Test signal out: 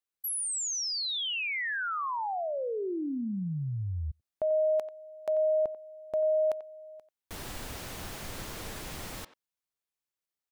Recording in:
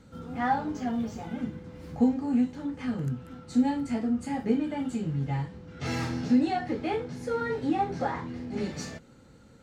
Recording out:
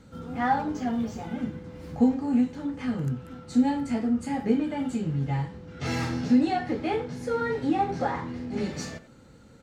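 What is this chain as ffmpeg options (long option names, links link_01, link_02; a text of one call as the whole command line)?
ffmpeg -i in.wav -filter_complex "[0:a]asplit=2[link_01][link_02];[link_02]adelay=90,highpass=300,lowpass=3400,asoftclip=type=hard:threshold=-21dB,volume=-14dB[link_03];[link_01][link_03]amix=inputs=2:normalize=0,volume=2dB" out.wav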